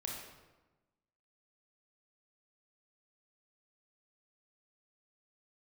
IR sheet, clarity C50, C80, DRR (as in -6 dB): 1.0 dB, 4.0 dB, -1.5 dB